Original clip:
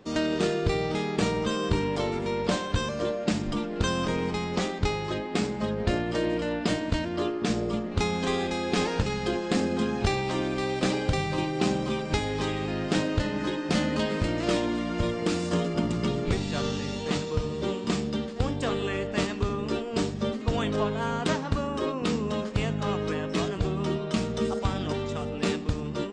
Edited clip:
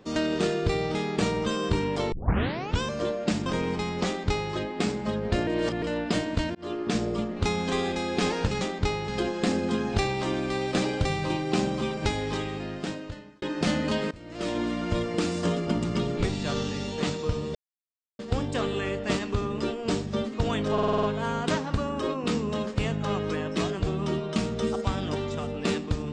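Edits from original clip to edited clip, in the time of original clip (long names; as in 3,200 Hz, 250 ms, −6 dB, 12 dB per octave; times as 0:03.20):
0:02.12: tape start 0.70 s
0:03.46–0:04.01: remove
0:04.61–0:05.08: duplicate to 0:09.16
0:06.02–0:06.37: reverse
0:07.10–0:07.36: fade in
0:12.25–0:13.50: fade out
0:14.19–0:14.68: fade in quadratic, from −20 dB
0:17.63–0:18.27: silence
0:20.81: stutter 0.05 s, 7 plays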